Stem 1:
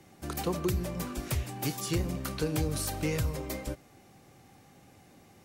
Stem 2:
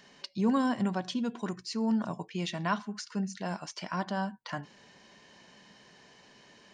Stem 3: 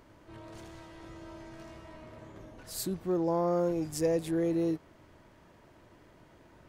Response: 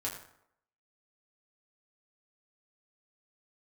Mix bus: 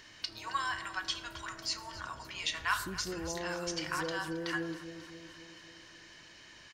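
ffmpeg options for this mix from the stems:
-filter_complex "[0:a]alimiter=level_in=1.5:limit=0.0631:level=0:latency=1:release=151,volume=0.668,asubboost=boost=6:cutoff=74,volume=0.1,asplit=2[s0][s1];[s1]volume=0.473[s2];[1:a]highpass=f=1200:w=0.5412,highpass=f=1200:w=1.3066,volume=1.12,asplit=4[s3][s4][s5][s6];[s4]volume=0.596[s7];[s5]volume=0.224[s8];[2:a]acompressor=threshold=0.0316:ratio=6,volume=0.473,asplit=2[s9][s10];[s10]volume=0.316[s11];[s6]apad=whole_len=240078[s12];[s0][s12]sidechaincompress=threshold=0.002:ratio=8:attack=16:release=118[s13];[3:a]atrim=start_sample=2205[s14];[s2][s7]amix=inputs=2:normalize=0[s15];[s15][s14]afir=irnorm=-1:irlink=0[s16];[s8][s11]amix=inputs=2:normalize=0,aecho=0:1:270|540|810|1080|1350|1620|1890|2160|2430:1|0.59|0.348|0.205|0.121|0.0715|0.0422|0.0249|0.0147[s17];[s13][s3][s9][s16][s17]amix=inputs=5:normalize=0"

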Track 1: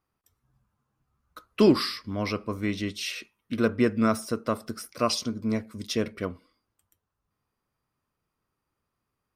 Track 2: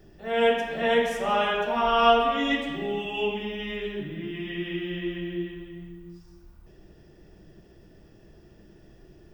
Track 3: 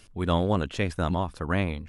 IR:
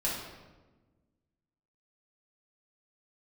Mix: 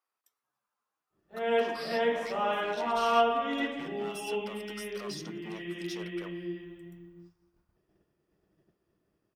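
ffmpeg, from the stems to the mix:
-filter_complex "[0:a]alimiter=limit=0.188:level=0:latency=1:release=342,asoftclip=type=hard:threshold=0.0668,volume=0.631,asplit=2[s0][s1];[1:a]agate=range=0.0224:threshold=0.00891:ratio=3:detection=peak,highshelf=f=3200:g=-9.5,adelay=1100,volume=0.596[s2];[2:a]adelay=2000,volume=0.188[s3];[s1]apad=whole_len=171546[s4];[s3][s4]sidechaincompress=threshold=0.00562:ratio=8:attack=16:release=543[s5];[s0][s5]amix=inputs=2:normalize=0,highpass=580,alimiter=level_in=3.16:limit=0.0631:level=0:latency=1:release=67,volume=0.316,volume=1[s6];[s2][s6]amix=inputs=2:normalize=0,highpass=f=170:p=1"

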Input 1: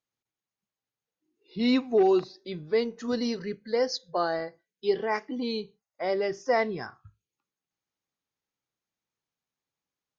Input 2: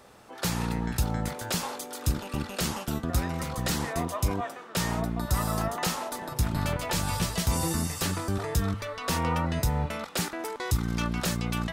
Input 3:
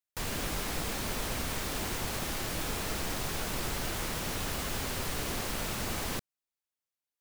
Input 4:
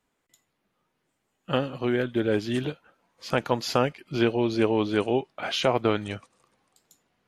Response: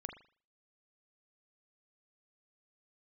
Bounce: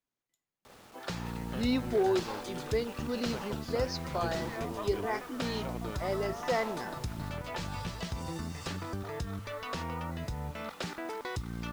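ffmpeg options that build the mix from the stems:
-filter_complex "[0:a]volume=0.501[s0];[1:a]lowpass=4800,acompressor=threshold=0.0251:ratio=6,acrusher=bits=8:mix=0:aa=0.000001,adelay=650,volume=0.794[s1];[2:a]adelay=1100,volume=0.106[s2];[3:a]volume=0.112[s3];[s0][s1][s2][s3]amix=inputs=4:normalize=0"

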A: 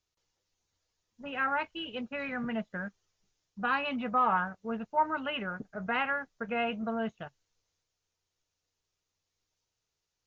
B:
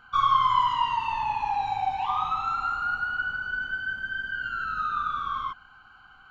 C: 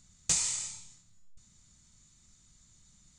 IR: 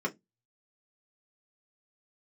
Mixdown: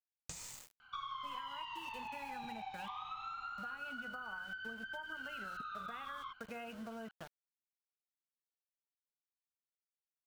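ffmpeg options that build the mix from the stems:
-filter_complex "[0:a]bandreject=f=60.77:t=h:w=4,bandreject=f=121.54:t=h:w=4,bandreject=f=182.31:t=h:w=4,bandreject=f=243.08:t=h:w=4,bandreject=f=303.85:t=h:w=4,bandreject=f=364.62:t=h:w=4,bandreject=f=425.39:t=h:w=4,bandreject=f=486.16:t=h:w=4,volume=0.531[s0];[1:a]equalizer=f=3300:t=o:w=2.4:g=12,adelay=800,volume=0.15[s1];[2:a]highshelf=f=2800:g=-10.5,volume=0.531[s2];[s0][s2]amix=inputs=2:normalize=0,aeval=exprs='val(0)*gte(abs(val(0)),0.00501)':c=same,acompressor=threshold=0.00794:ratio=6,volume=1[s3];[s1][s3]amix=inputs=2:normalize=0,acompressor=threshold=0.00794:ratio=6"

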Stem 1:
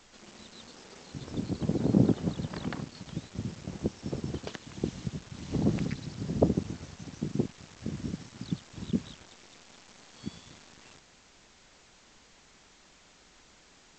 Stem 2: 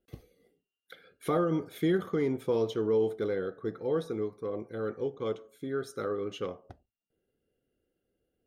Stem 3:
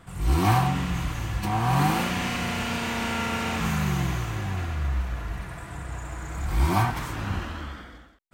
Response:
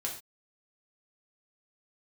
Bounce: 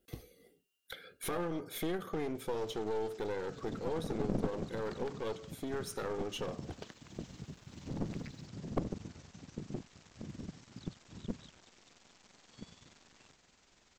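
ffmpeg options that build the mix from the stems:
-filter_complex "[0:a]tremolo=f=21:d=0.462,adelay=2350,volume=0.473[s0];[1:a]highshelf=f=3100:g=7.5,acompressor=threshold=0.0126:ratio=2.5,volume=1.41[s1];[s0][s1]amix=inputs=2:normalize=0,aeval=exprs='clip(val(0),-1,0.01)':c=same"

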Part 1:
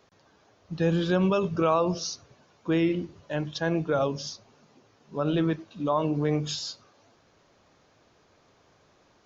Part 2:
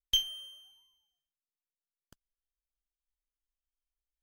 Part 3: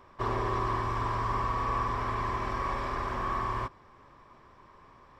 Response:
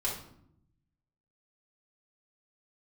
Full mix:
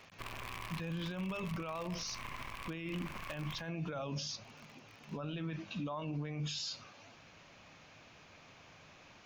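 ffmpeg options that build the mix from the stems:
-filter_complex "[0:a]bandreject=f=66.09:t=h:w=4,bandreject=f=132.18:t=h:w=4,bandreject=f=198.27:t=h:w=4,volume=1.41[s0];[2:a]acrusher=bits=5:dc=4:mix=0:aa=0.000001,volume=0.447[s1];[s0][s1]amix=inputs=2:normalize=0,equalizer=f=160:t=o:w=0.67:g=3,equalizer=f=400:t=o:w=0.67:g=-7,equalizer=f=2500:t=o:w=0.67:g=10,alimiter=limit=0.1:level=0:latency=1:release=185,volume=1,alimiter=level_in=2.51:limit=0.0631:level=0:latency=1:release=38,volume=0.398"

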